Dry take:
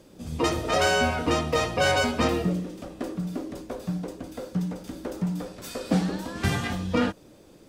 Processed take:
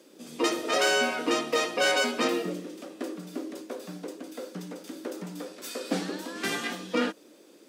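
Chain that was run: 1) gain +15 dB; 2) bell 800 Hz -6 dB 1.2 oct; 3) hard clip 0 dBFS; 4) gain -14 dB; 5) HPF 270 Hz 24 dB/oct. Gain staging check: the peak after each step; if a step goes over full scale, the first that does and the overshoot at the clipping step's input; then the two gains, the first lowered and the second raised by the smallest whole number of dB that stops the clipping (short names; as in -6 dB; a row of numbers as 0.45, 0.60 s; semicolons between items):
+5.5, +3.5, 0.0, -14.0, -11.5 dBFS; step 1, 3.5 dB; step 1 +11 dB, step 4 -10 dB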